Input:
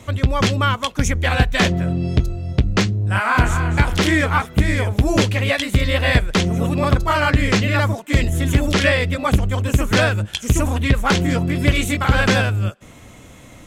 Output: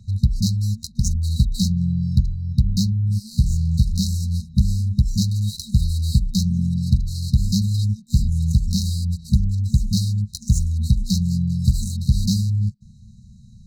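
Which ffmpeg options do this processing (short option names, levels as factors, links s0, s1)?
-filter_complex "[0:a]asettb=1/sr,asplit=3[s0][s1][s2];[s0]atrim=end=5.224[s3];[s1]atrim=start=5.22:end=6.11,asetpts=PTS-STARTPTS,afade=t=in:d=0.004:c=qsin,afade=t=out:st=0.886:d=0.004:c=qsin,acrusher=bits=7:dc=4:mix=0:aa=0.000001[s4];[s2]atrim=start=6.106[s5];[s3][s4]acrossfade=d=0.004:c1=hsin:c2=qsin[s6];[s6][s5]acrossfade=d=0.004:c1=qsin:c2=hsin,adynamicsmooth=sensitivity=4.5:basefreq=2900,afftfilt=real='re*(1-between(b*sr/4096,230,3800))':imag='im*(1-between(b*sr/4096,230,3800))':win_size=4096:overlap=0.75"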